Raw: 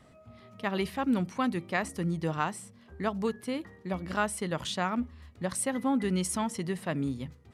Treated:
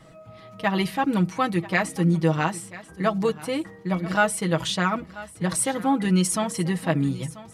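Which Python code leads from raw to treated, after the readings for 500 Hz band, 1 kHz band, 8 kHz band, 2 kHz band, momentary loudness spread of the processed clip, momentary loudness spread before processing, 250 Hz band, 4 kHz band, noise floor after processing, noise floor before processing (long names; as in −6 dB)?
+7.0 dB, +7.5 dB, +8.0 dB, +8.5 dB, 8 LU, 8 LU, +6.5 dB, +8.0 dB, −47 dBFS, −57 dBFS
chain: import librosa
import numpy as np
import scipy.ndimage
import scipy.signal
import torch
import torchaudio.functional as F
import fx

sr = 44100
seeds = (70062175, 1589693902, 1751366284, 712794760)

p1 = x + 0.8 * np.pad(x, (int(6.2 * sr / 1000.0), 0))[:len(x)]
p2 = p1 + fx.echo_single(p1, sr, ms=987, db=-17.5, dry=0)
y = p2 * 10.0 ** (5.5 / 20.0)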